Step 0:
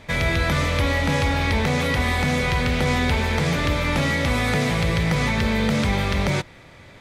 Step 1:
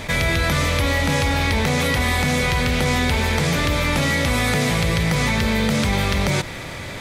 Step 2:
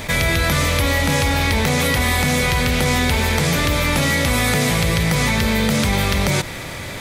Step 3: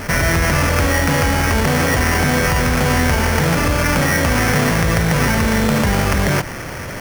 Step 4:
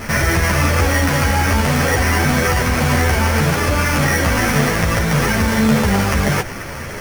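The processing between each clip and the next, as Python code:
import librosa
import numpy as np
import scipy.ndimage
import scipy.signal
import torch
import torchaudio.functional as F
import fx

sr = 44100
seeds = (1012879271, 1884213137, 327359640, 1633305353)

y1 = fx.high_shelf(x, sr, hz=5800.0, db=9.0)
y1 = fx.env_flatten(y1, sr, amount_pct=50)
y2 = fx.high_shelf(y1, sr, hz=9800.0, db=9.5)
y2 = y2 * 10.0 ** (1.5 / 20.0)
y3 = fx.sample_hold(y2, sr, seeds[0], rate_hz=3800.0, jitter_pct=0)
y3 = y3 * 10.0 ** (2.0 / 20.0)
y4 = fx.ensemble(y3, sr)
y4 = y4 * 10.0 ** (3.0 / 20.0)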